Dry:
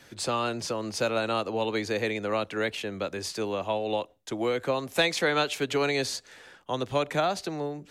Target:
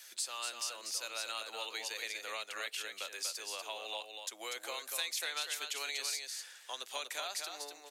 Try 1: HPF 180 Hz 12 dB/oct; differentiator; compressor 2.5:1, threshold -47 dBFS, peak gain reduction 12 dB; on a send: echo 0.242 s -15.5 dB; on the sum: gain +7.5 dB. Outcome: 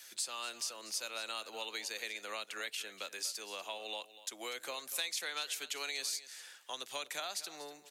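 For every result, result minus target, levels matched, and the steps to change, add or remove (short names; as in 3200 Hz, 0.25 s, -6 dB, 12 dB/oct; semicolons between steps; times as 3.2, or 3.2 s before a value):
echo-to-direct -10 dB; 250 Hz band +6.0 dB
change: echo 0.242 s -5.5 dB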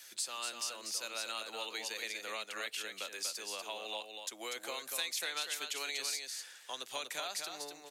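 250 Hz band +6.0 dB
change: HPF 420 Hz 12 dB/oct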